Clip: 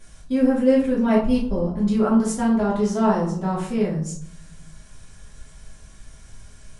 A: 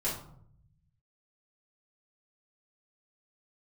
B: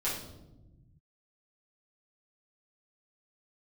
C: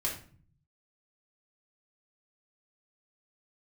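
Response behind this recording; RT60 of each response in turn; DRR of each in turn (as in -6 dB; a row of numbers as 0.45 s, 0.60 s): A; 0.65 s, 1.0 s, 0.45 s; -8.5 dB, -9.0 dB, -4.0 dB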